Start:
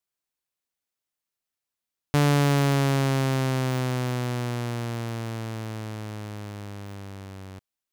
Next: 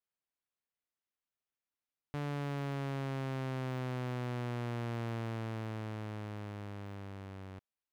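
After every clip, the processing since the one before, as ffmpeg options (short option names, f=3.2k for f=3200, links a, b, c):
-af "bass=f=250:g=-1,treble=f=4k:g=-11,alimiter=level_in=1.5dB:limit=-24dB:level=0:latency=1,volume=-1.5dB,volume=-5.5dB"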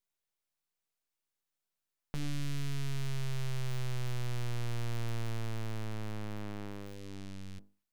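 -af "bandreject=f=50:t=h:w=6,bandreject=f=100:t=h:w=6,bandreject=f=150:t=h:w=6,bandreject=f=200:t=h:w=6,aeval=exprs='abs(val(0))':c=same,volume=6dB"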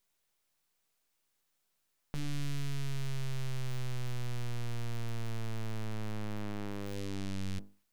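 -af "alimiter=level_in=11.5dB:limit=-24dB:level=0:latency=1:release=12,volume=-11.5dB,volume=9.5dB"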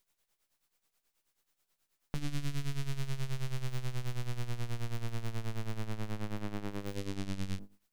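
-af "tremolo=f=9.3:d=0.74,volume=3.5dB"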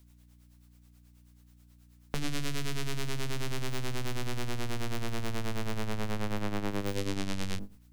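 -filter_complex "[0:a]aeval=exprs='val(0)+0.000562*(sin(2*PI*60*n/s)+sin(2*PI*2*60*n/s)/2+sin(2*PI*3*60*n/s)/3+sin(2*PI*4*60*n/s)/4+sin(2*PI*5*60*n/s)/5)':c=same,acrossover=split=240[a][b];[a]asoftclip=type=hard:threshold=-35.5dB[c];[c][b]amix=inputs=2:normalize=0,volume=8dB"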